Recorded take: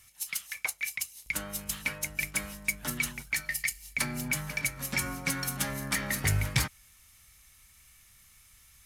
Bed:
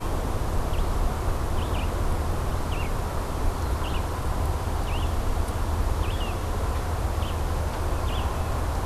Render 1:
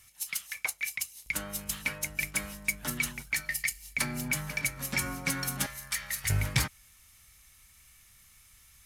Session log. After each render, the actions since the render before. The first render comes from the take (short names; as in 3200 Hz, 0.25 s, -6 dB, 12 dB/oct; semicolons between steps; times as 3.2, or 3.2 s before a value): 5.66–6.3 passive tone stack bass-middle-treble 10-0-10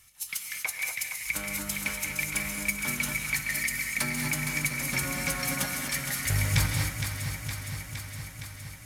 echo with dull and thin repeats by turns 0.232 s, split 850 Hz, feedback 84%, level -5.5 dB; non-linear reverb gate 0.27 s rising, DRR 3 dB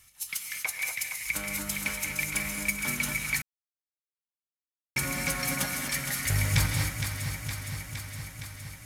3.42–4.96 mute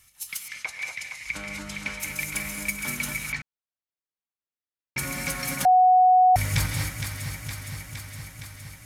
0.48–2 LPF 5500 Hz; 3.32–4.98 air absorption 150 m; 5.65–6.36 bleep 738 Hz -13 dBFS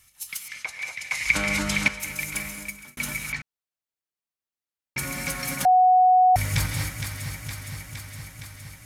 1.11–1.88 gain +10.5 dB; 2.39–2.97 fade out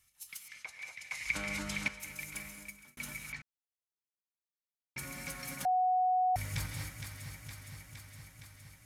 gain -12.5 dB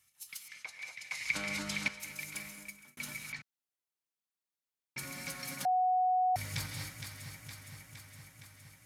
dynamic EQ 4400 Hz, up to +5 dB, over -57 dBFS, Q 1.8; HPF 100 Hz 12 dB/oct